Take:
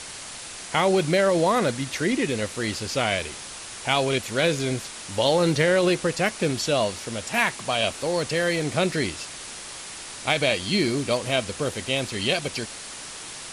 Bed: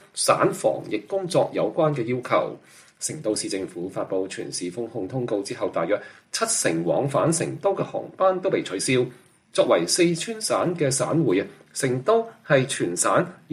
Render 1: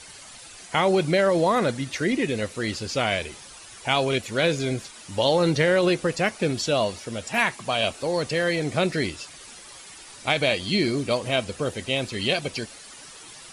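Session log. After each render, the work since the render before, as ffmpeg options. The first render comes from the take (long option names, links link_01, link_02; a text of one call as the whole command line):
ffmpeg -i in.wav -af "afftdn=noise_reduction=10:noise_floor=-38" out.wav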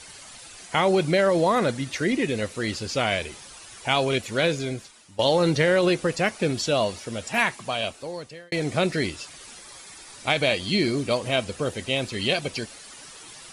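ffmpeg -i in.wav -filter_complex "[0:a]asettb=1/sr,asplit=3[link_01][link_02][link_03];[link_01]atrim=end=9.604[link_04];[link_02]atrim=start=9.6:end=10.15,asetpts=PTS-STARTPTS,afade=type=in:duration=0.004:curve=qsin,afade=type=out:start_time=0.546:duration=0.004:curve=qsin,bandreject=frequency=2900:width=9.3[link_05];[link_03]atrim=start=10.146[link_06];[link_04][link_05]acrossfade=duration=0.004:curve1=hsin:curve2=qsin[link_07];[link_07][link_06]acrossfade=duration=0.004:curve1=qsin:curve2=hsin,asplit=3[link_08][link_09][link_10];[link_08]atrim=end=5.19,asetpts=PTS-STARTPTS,afade=type=out:start_time=4.39:duration=0.8:silence=0.149624[link_11];[link_09]atrim=start=5.19:end=8.52,asetpts=PTS-STARTPTS,afade=type=in:duration=0.004:curve=hsin:silence=0.149624,afade=type=out:start_time=2.23:duration=1.1[link_12];[link_10]atrim=start=8.52,asetpts=PTS-STARTPTS,afade=type=in:duration=0.004:curve=hsin[link_13];[link_11][link_12][link_13]concat=n=3:v=0:a=1" out.wav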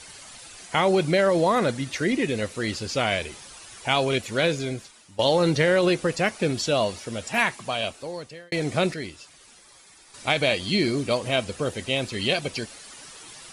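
ffmpeg -i in.wav -filter_complex "[0:a]asplit=3[link_01][link_02][link_03];[link_01]atrim=end=8.942[link_04];[link_02]atrim=start=8.938:end=10.142,asetpts=PTS-STARTPTS,volume=-8dB[link_05];[link_03]atrim=start=10.138[link_06];[link_04][link_05]acrossfade=duration=0.004:curve1=hsin:curve2=hsin[link_07];[link_07][link_06]acrossfade=duration=0.004:curve1=hsin:curve2=hsin" out.wav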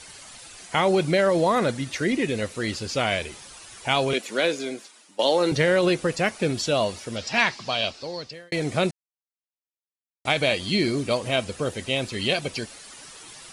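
ffmpeg -i in.wav -filter_complex "[0:a]asettb=1/sr,asplit=3[link_01][link_02][link_03];[link_01]atrim=end=4.134[link_04];[link_02]atrim=start=4.13:end=5.52,asetpts=PTS-STARTPTS,afade=type=in:duration=0.004:curve=qsin,afade=type=out:start_time=1.386:duration=0.004:curve=qsin,highpass=frequency=230:width=0.5412,highpass=frequency=230:width=1.3066[link_05];[link_03]atrim=start=5.516[link_06];[link_04][link_05]acrossfade=duration=0.004:curve1=hsin:curve2=qsin[link_07];[link_07][link_06]acrossfade=duration=0.004:curve1=qsin:curve2=hsin,asettb=1/sr,asplit=3[link_08][link_09][link_10];[link_08]atrim=end=7.164[link_11];[link_09]atrim=start=7.16:end=8.33,asetpts=PTS-STARTPTS,afade=type=in:duration=0.004:curve=qsin,afade=type=out:start_time=1.166:duration=0.004:curve=qsin,lowpass=frequency=4900:width_type=q:width=3.4[link_12];[link_10]atrim=start=8.326[link_13];[link_11][link_12]acrossfade=duration=0.004:curve1=hsin:curve2=qsin[link_14];[link_14][link_13]acrossfade=duration=0.004:curve1=qsin:curve2=hsin,asplit=3[link_15][link_16][link_17];[link_15]atrim=end=8.91,asetpts=PTS-STARTPTS,afade=type=out:start_time=8.906:duration=0.004:curve=hsin[link_18];[link_16]atrim=start=8.91:end=10.25,asetpts=PTS-STARTPTS,volume=0[link_19];[link_17]atrim=start=10.25,asetpts=PTS-STARTPTS,afade=type=in:duration=0.004:curve=hsin[link_20];[link_18][link_19][link_20]concat=n=3:v=0:a=1" out.wav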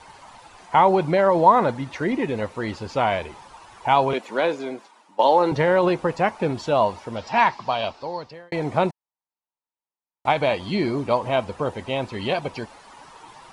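ffmpeg -i in.wav -af "lowpass=frequency=1600:poles=1,equalizer=frequency=920:width_type=o:width=0.63:gain=14.5" out.wav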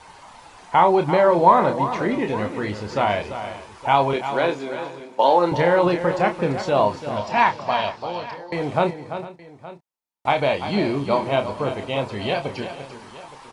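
ffmpeg -i in.wav -filter_complex "[0:a]asplit=2[link_01][link_02];[link_02]adelay=29,volume=-7dB[link_03];[link_01][link_03]amix=inputs=2:normalize=0,asplit=2[link_04][link_05];[link_05]aecho=0:1:341|451|869:0.299|0.119|0.119[link_06];[link_04][link_06]amix=inputs=2:normalize=0" out.wav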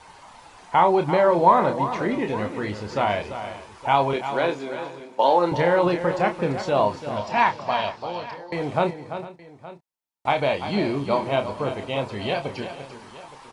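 ffmpeg -i in.wav -af "volume=-2dB" out.wav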